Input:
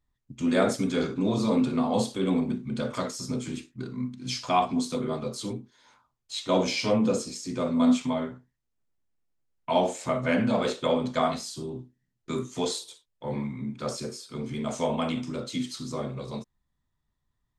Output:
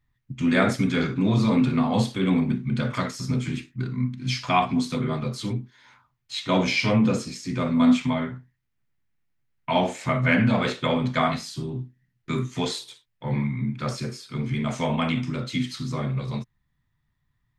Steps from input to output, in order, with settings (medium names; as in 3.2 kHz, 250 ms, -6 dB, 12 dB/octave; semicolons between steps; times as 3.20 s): graphic EQ 125/500/2000/8000 Hz +9/-5/+8/-6 dB; trim +2.5 dB